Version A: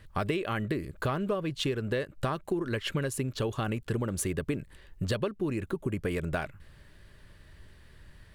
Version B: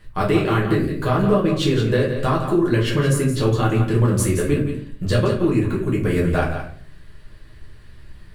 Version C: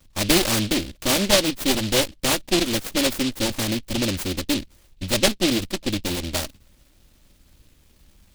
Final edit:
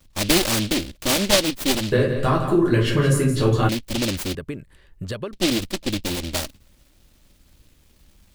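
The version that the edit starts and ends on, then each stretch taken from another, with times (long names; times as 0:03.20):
C
0:01.92–0:03.69: punch in from B
0:04.35–0:05.33: punch in from A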